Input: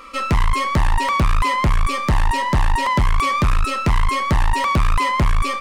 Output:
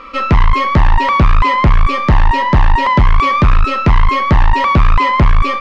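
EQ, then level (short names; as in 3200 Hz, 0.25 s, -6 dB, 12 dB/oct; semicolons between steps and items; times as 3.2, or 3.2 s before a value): air absorption 190 m; +7.5 dB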